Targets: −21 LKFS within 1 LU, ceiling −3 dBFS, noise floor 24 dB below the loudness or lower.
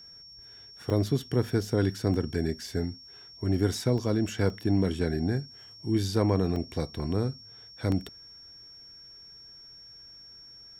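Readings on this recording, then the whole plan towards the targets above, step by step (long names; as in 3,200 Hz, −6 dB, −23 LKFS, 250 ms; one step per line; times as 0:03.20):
number of dropouts 6; longest dropout 1.6 ms; interfering tone 5,500 Hz; level of the tone −47 dBFS; integrated loudness −29.0 LKFS; sample peak −12.0 dBFS; target loudness −21.0 LKFS
→ repair the gap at 0:00.90/0:02.14/0:03.98/0:04.50/0:06.56/0:07.92, 1.6 ms
notch filter 5,500 Hz, Q 30
level +8 dB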